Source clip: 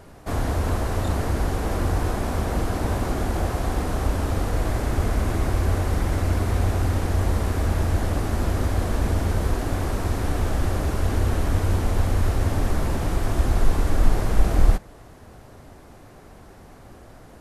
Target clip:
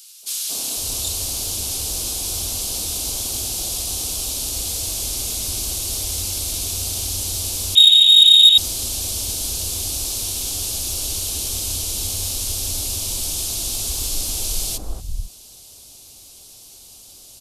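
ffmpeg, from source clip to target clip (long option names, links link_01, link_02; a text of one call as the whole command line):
ffmpeg -i in.wav -filter_complex "[0:a]acrossover=split=170|1400[link_01][link_02][link_03];[link_02]adelay=230[link_04];[link_01]adelay=500[link_05];[link_05][link_04][link_03]amix=inputs=3:normalize=0,asettb=1/sr,asplit=3[link_06][link_07][link_08];[link_06]atrim=end=7.754[link_09];[link_07]atrim=start=7.75:end=8.58,asetpts=PTS-STARTPTS,afade=type=in:duration=0.004:curve=qsin,afade=type=out:start_time=0.826:duration=0.004:curve=qsin,lowpass=frequency=3200:width_type=q:width=0.5098,lowpass=frequency=3200:width_type=q:width=0.6013,lowpass=frequency=3200:width_type=q:width=0.9,lowpass=frequency=3200:width_type=q:width=2.563,afreqshift=-3800[link_10];[link_08]atrim=start=8.576[link_11];[link_09][link_10]acrossfade=duration=0.004:curve1=hsin:curve2=qsin[link_12];[link_12][link_11]acrossfade=duration=0.004:curve1=qsin:curve2=hsin,aexciter=amount=11.3:drive=9.3:freq=2900,volume=-10.5dB" out.wav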